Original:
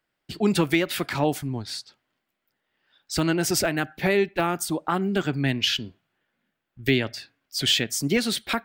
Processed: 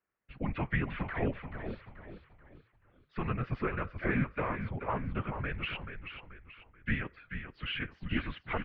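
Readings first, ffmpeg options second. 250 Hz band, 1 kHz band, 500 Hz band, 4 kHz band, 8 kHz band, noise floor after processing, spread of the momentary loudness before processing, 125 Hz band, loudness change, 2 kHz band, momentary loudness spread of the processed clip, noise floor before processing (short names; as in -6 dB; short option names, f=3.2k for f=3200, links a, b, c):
-11.5 dB, -8.5 dB, -13.5 dB, -19.5 dB, under -40 dB, -70 dBFS, 10 LU, -6.5 dB, -11.5 dB, -8.0 dB, 15 LU, -80 dBFS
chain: -filter_complex "[0:a]afftfilt=real='hypot(re,im)*cos(2*PI*random(0))':imag='hypot(re,im)*sin(2*PI*random(1))':win_size=512:overlap=0.75,highpass=f=250:t=q:w=0.5412,highpass=f=250:t=q:w=1.307,lowpass=f=2.7k:t=q:w=0.5176,lowpass=f=2.7k:t=q:w=0.7071,lowpass=f=2.7k:t=q:w=1.932,afreqshift=-220,asplit=5[a][b][c][d][e];[b]adelay=433,afreqshift=-40,volume=-8dB[f];[c]adelay=866,afreqshift=-80,volume=-16.4dB[g];[d]adelay=1299,afreqshift=-120,volume=-24.8dB[h];[e]adelay=1732,afreqshift=-160,volume=-33.2dB[i];[a][f][g][h][i]amix=inputs=5:normalize=0,volume=-2dB"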